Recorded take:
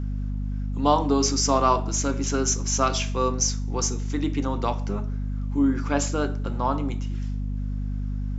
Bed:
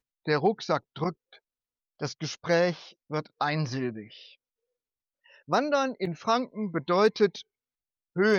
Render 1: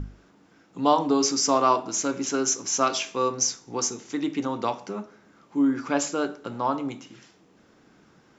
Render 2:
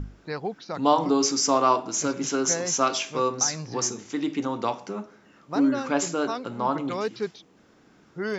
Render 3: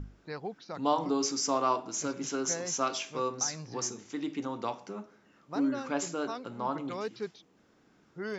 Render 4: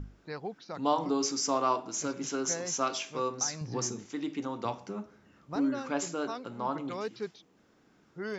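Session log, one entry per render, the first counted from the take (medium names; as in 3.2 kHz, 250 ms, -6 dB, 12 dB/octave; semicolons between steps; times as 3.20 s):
hum notches 50/100/150/200/250 Hz
add bed -7 dB
trim -7.5 dB
3.61–4.06 s: bass shelf 260 Hz +10 dB; 4.65–5.56 s: peaking EQ 76 Hz +13 dB 1.9 oct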